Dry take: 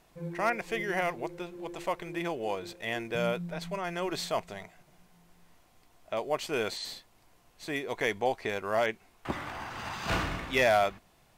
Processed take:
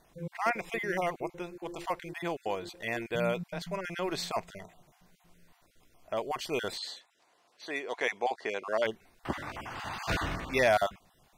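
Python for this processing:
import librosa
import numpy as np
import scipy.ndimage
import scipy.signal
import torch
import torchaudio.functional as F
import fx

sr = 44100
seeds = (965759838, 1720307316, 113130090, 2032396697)

y = fx.spec_dropout(x, sr, seeds[0], share_pct=24)
y = fx.bandpass_edges(y, sr, low_hz=fx.line((6.79, 510.0), (8.84, 280.0)), high_hz=7800.0, at=(6.79, 8.84), fade=0.02)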